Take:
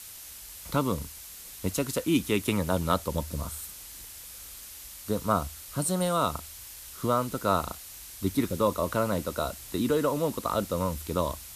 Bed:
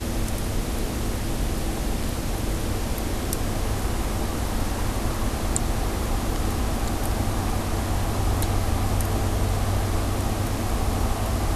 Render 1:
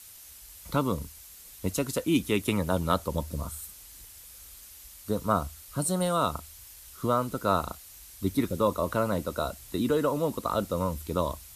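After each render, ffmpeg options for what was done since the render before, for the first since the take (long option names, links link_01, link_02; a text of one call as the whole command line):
ffmpeg -i in.wav -af "afftdn=noise_reduction=6:noise_floor=-45" out.wav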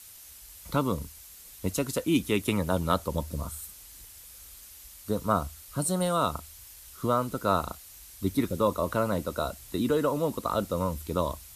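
ffmpeg -i in.wav -af anull out.wav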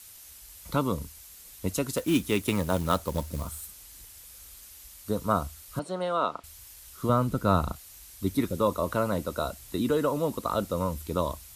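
ffmpeg -i in.wav -filter_complex "[0:a]asettb=1/sr,asplit=3[link_01][link_02][link_03];[link_01]atrim=end=1.974[link_04];[link_02]atrim=start=1.97:end=3.67,asetpts=PTS-STARTPTS,afade=type=in:duration=0.004:curve=qsin,afade=type=out:start_time=1.696:duration=0.004:curve=qsin,acrusher=bits=4:mode=log:mix=0:aa=0.000001[link_05];[link_03]atrim=start=3.666[link_06];[link_04][link_05]acrossfade=duration=0.004:curve1=hsin:curve2=qsin[link_07];[link_07][link_06]acrossfade=duration=0.004:curve1=qsin:curve2=hsin,asettb=1/sr,asplit=3[link_08][link_09][link_10];[link_08]atrim=end=5.794[link_11];[link_09]atrim=start=5.79:end=6.44,asetpts=PTS-STARTPTS,afade=type=in:duration=0.004:curve=qsin,afade=type=out:start_time=0.646:duration=0.004:curve=qsin,highpass=310,lowpass=3100[link_12];[link_10]atrim=start=6.436[link_13];[link_11][link_12]acrossfade=duration=0.004:curve1=hsin:curve2=qsin[link_14];[link_14][link_13]acrossfade=duration=0.004:curve1=qsin:curve2=hsin,asettb=1/sr,asplit=3[link_15][link_16][link_17];[link_15]atrim=end=7.094[link_18];[link_16]atrim=start=7.09:end=7.76,asetpts=PTS-STARTPTS,afade=type=in:duration=0.004:curve=qsin,afade=type=out:start_time=0.666:duration=0.004:curve=qsin,bass=frequency=250:gain=9,treble=frequency=4000:gain=-3[link_19];[link_17]atrim=start=7.756[link_20];[link_18][link_19]acrossfade=duration=0.004:curve1=hsin:curve2=qsin[link_21];[link_21][link_20]acrossfade=duration=0.004:curve1=qsin:curve2=hsin" out.wav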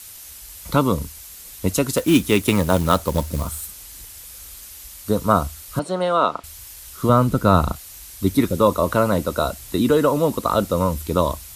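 ffmpeg -i in.wav -af "volume=9dB,alimiter=limit=-3dB:level=0:latency=1" out.wav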